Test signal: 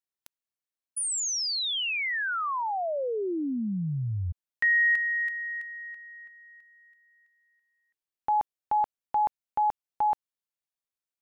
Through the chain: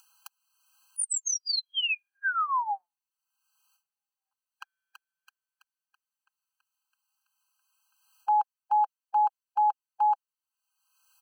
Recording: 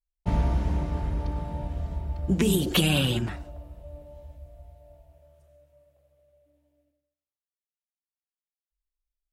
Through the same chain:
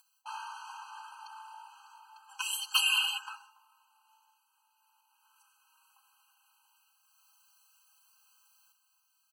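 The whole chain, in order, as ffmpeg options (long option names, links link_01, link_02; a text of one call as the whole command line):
ffmpeg -i in.wav -filter_complex "[0:a]afftfilt=real='re*(1-between(b*sr/4096,160,660))':imag='im*(1-between(b*sr/4096,160,660))':win_size=4096:overlap=0.75,equalizer=frequency=290:width_type=o:width=0.59:gain=14.5,aecho=1:1:3.9:0.73,acompressor=mode=upward:threshold=-38dB:ratio=2.5:attack=13:release=489:knee=2.83:detection=peak,acrossover=split=1100[link_01][link_02];[link_02]asoftclip=type=hard:threshold=-16.5dB[link_03];[link_01][link_03]amix=inputs=2:normalize=0,afftfilt=real='re*eq(mod(floor(b*sr/1024/810),2),1)':imag='im*eq(mod(floor(b*sr/1024/810),2),1)':win_size=1024:overlap=0.75" out.wav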